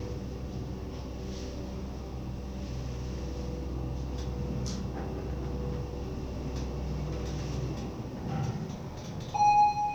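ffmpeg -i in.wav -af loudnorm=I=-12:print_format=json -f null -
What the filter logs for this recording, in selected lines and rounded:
"input_i" : "-32.9",
"input_tp" : "-14.9",
"input_lra" : "7.6",
"input_thresh" : "-42.9",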